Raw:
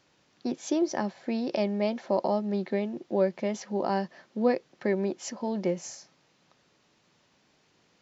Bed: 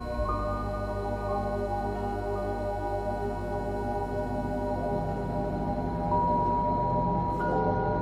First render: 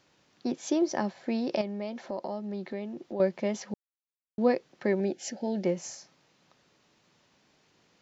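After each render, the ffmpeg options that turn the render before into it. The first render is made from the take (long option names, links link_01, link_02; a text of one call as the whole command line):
ffmpeg -i in.wav -filter_complex "[0:a]asettb=1/sr,asplit=3[link_01][link_02][link_03];[link_01]atrim=end=1.614[link_04];[link_02]atrim=start=1.61:end=3.2,asetpts=PTS-STARTPTS,afade=type=in:duration=0.004:curve=qsin,afade=type=out:start_time=1.586:duration=0.004:curve=qsin,acompressor=threshold=-37dB:ratio=2:attack=3.2:release=140:knee=1:detection=peak[link_05];[link_03]atrim=start=3.196[link_06];[link_04][link_05]acrossfade=duration=0.004:curve1=hsin:curve2=qsin[link_07];[link_07][link_06]acrossfade=duration=0.004:curve1=qsin:curve2=hsin,asettb=1/sr,asplit=3[link_08][link_09][link_10];[link_08]atrim=end=5.004[link_11];[link_09]atrim=start=5:end=5.64,asetpts=PTS-STARTPTS,afade=type=in:duration=0.004:curve=qsin,afade=type=out:start_time=0.636:duration=0.004:curve=qsin,asuperstop=centerf=1100:order=8:qfactor=2.1[link_12];[link_10]atrim=start=5.636[link_13];[link_11][link_12]acrossfade=duration=0.004:curve1=hsin:curve2=qsin[link_14];[link_14][link_13]acrossfade=duration=0.004:curve1=qsin:curve2=hsin,asplit=3[link_15][link_16][link_17];[link_15]atrim=end=3.74,asetpts=PTS-STARTPTS,afade=type=out:start_time=3.736:duration=0.004:curve=hsin[link_18];[link_16]atrim=start=3.74:end=4.38,asetpts=PTS-STARTPTS,volume=0[link_19];[link_17]atrim=start=4.38,asetpts=PTS-STARTPTS,afade=type=in:duration=0.004:curve=hsin[link_20];[link_18][link_19][link_20]concat=n=3:v=0:a=1" out.wav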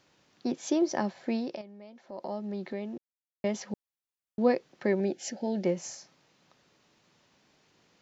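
ffmpeg -i in.wav -filter_complex "[0:a]asplit=5[link_01][link_02][link_03][link_04][link_05];[link_01]atrim=end=1.6,asetpts=PTS-STARTPTS,afade=type=out:start_time=1.34:duration=0.26:silence=0.211349[link_06];[link_02]atrim=start=1.6:end=2.06,asetpts=PTS-STARTPTS,volume=-13.5dB[link_07];[link_03]atrim=start=2.06:end=2.98,asetpts=PTS-STARTPTS,afade=type=in:duration=0.26:silence=0.211349,afade=type=out:start_time=0.916:duration=0.004:curve=hsin[link_08];[link_04]atrim=start=2.98:end=3.44,asetpts=PTS-STARTPTS,volume=0[link_09];[link_05]atrim=start=3.44,asetpts=PTS-STARTPTS,afade=type=in:duration=0.004:curve=hsin[link_10];[link_06][link_07][link_08][link_09][link_10]concat=n=5:v=0:a=1" out.wav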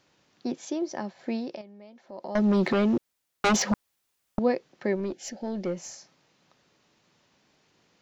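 ffmpeg -i in.wav -filter_complex "[0:a]asettb=1/sr,asplit=3[link_01][link_02][link_03];[link_01]atrim=end=2.354[link_04];[link_02]atrim=start=2.35:end=4.39,asetpts=PTS-STARTPTS,afade=type=in:duration=0.004:curve=qsin,afade=type=out:start_time=2.036:duration=0.004:curve=qsin,aeval=exprs='0.126*sin(PI/2*4.47*val(0)/0.126)':channel_layout=same[link_05];[link_03]atrim=start=4.386[link_06];[link_04][link_05]acrossfade=duration=0.004:curve1=hsin:curve2=qsin[link_07];[link_07][link_06]acrossfade=duration=0.004:curve1=qsin:curve2=hsin,asettb=1/sr,asplit=3[link_08][link_09][link_10];[link_08]atrim=end=4.964[link_11];[link_09]atrim=start=4.96:end=5.93,asetpts=PTS-STARTPTS,afade=type=in:duration=0.004:curve=qsin,afade=type=out:start_time=0.966:duration=0.004:curve=qsin,aeval=exprs='(tanh(14.1*val(0)+0.2)-tanh(0.2))/14.1':channel_layout=same[link_12];[link_10]atrim=start=5.926[link_13];[link_11][link_12]acrossfade=duration=0.004:curve1=hsin:curve2=qsin[link_14];[link_14][link_13]acrossfade=duration=0.004:curve1=qsin:curve2=hsin,asplit=3[link_15][link_16][link_17];[link_15]atrim=end=0.652[link_18];[link_16]atrim=start=0.648:end=1.192,asetpts=PTS-STARTPTS,volume=-4dB[link_19];[link_17]atrim=start=1.188[link_20];[link_18][link_19]acrossfade=duration=0.004:curve1=hsin:curve2=hsin[link_21];[link_21][link_20]acrossfade=duration=0.004:curve1=hsin:curve2=hsin" out.wav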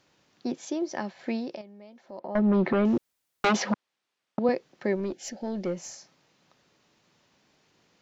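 ffmpeg -i in.wav -filter_complex "[0:a]asettb=1/sr,asplit=3[link_01][link_02][link_03];[link_01]atrim=end=0.924[link_04];[link_02]atrim=start=0.92:end=1.32,asetpts=PTS-STARTPTS,afade=type=in:duration=0.004:curve=qsin,afade=type=out:start_time=0.396:duration=0.004:curve=qsin,equalizer=frequency=2400:width_type=o:width=1.9:gain=5.5[link_05];[link_03]atrim=start=1.316[link_06];[link_04][link_05]acrossfade=duration=0.004:curve1=hsin:curve2=qsin[link_07];[link_07][link_06]acrossfade=duration=0.004:curve1=qsin:curve2=hsin,asettb=1/sr,asplit=3[link_08][link_09][link_10];[link_08]atrim=end=2.194[link_11];[link_09]atrim=start=2.19:end=2.85,asetpts=PTS-STARTPTS,afade=type=in:duration=0.004:curve=qsin,afade=type=out:start_time=0.656:duration=0.004:curve=qsin,lowpass=2100[link_12];[link_10]atrim=start=2.846[link_13];[link_11][link_12]acrossfade=duration=0.004:curve1=hsin:curve2=qsin[link_14];[link_14][link_13]acrossfade=duration=0.004:curve1=qsin:curve2=hsin,asettb=1/sr,asplit=3[link_15][link_16][link_17];[link_15]atrim=end=3.454[link_18];[link_16]atrim=start=3.45:end=4.49,asetpts=PTS-STARTPTS,afade=type=in:duration=0.004:curve=qsin,afade=type=out:start_time=1.036:duration=0.004:curve=qsin,highpass=180,lowpass=4400[link_19];[link_17]atrim=start=4.486[link_20];[link_18][link_19]acrossfade=duration=0.004:curve1=hsin:curve2=qsin[link_21];[link_21][link_20]acrossfade=duration=0.004:curve1=qsin:curve2=hsin" out.wav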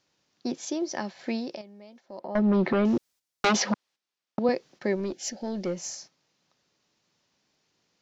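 ffmpeg -i in.wav -af "agate=range=-9dB:threshold=-53dB:ratio=16:detection=peak,equalizer=frequency=5400:width_type=o:width=1.2:gain=6.5" out.wav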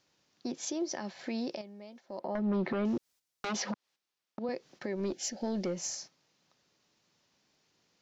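ffmpeg -i in.wav -af "acompressor=threshold=-28dB:ratio=6,alimiter=level_in=1.5dB:limit=-24dB:level=0:latency=1:release=128,volume=-1.5dB" out.wav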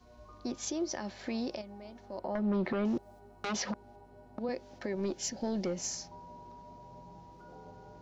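ffmpeg -i in.wav -i bed.wav -filter_complex "[1:a]volume=-24.5dB[link_01];[0:a][link_01]amix=inputs=2:normalize=0" out.wav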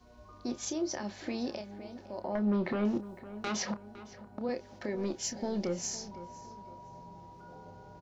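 ffmpeg -i in.wav -filter_complex "[0:a]asplit=2[link_01][link_02];[link_02]adelay=29,volume=-10dB[link_03];[link_01][link_03]amix=inputs=2:normalize=0,asplit=2[link_04][link_05];[link_05]adelay=509,lowpass=frequency=2900:poles=1,volume=-15dB,asplit=2[link_06][link_07];[link_07]adelay=509,lowpass=frequency=2900:poles=1,volume=0.4,asplit=2[link_08][link_09];[link_09]adelay=509,lowpass=frequency=2900:poles=1,volume=0.4,asplit=2[link_10][link_11];[link_11]adelay=509,lowpass=frequency=2900:poles=1,volume=0.4[link_12];[link_04][link_06][link_08][link_10][link_12]amix=inputs=5:normalize=0" out.wav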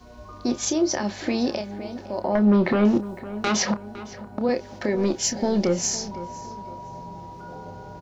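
ffmpeg -i in.wav -af "volume=11.5dB" out.wav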